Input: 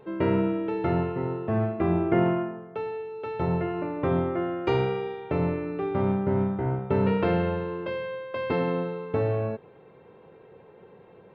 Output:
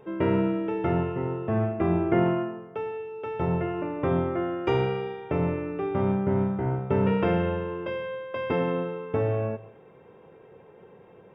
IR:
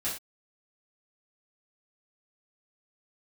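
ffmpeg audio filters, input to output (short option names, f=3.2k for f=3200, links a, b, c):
-filter_complex "[0:a]asuperstop=centerf=4200:order=4:qfactor=4.3,asplit=2[a][b];[1:a]atrim=start_sample=2205,adelay=121[c];[b][c]afir=irnorm=-1:irlink=0,volume=-25dB[d];[a][d]amix=inputs=2:normalize=0"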